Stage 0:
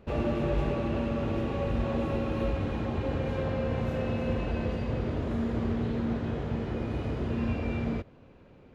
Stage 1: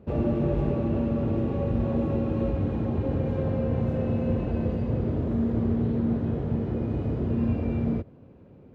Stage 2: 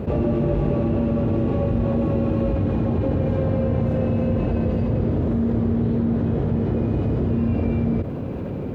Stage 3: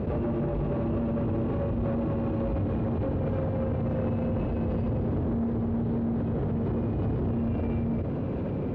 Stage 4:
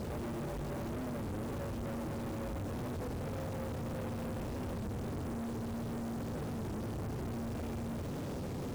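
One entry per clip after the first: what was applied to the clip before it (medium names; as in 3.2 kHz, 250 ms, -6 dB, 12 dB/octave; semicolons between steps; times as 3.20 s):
high-pass 72 Hz; tilt shelf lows +8 dB, about 820 Hz; trim -1.5 dB
level flattener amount 70%; trim +2.5 dB
peak limiter -17 dBFS, peak gain reduction 7 dB; saturation -23 dBFS, distortion -14 dB; distance through air 120 m
bit crusher 7-bit; saturation -33.5 dBFS, distortion -11 dB; warped record 33 1/3 rpm, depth 160 cents; trim -3.5 dB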